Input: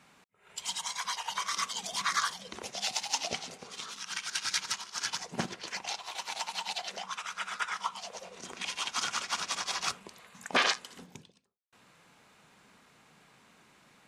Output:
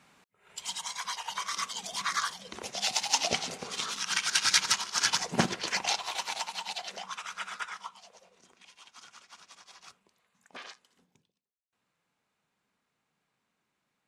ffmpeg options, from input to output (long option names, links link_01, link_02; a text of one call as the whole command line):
ffmpeg -i in.wav -af "volume=7.5dB,afade=type=in:start_time=2.4:duration=1.27:silence=0.375837,afade=type=out:start_time=5.9:duration=0.62:silence=0.375837,afade=type=out:start_time=7.43:duration=0.5:silence=0.334965,afade=type=out:start_time=7.93:duration=0.67:silence=0.354813" out.wav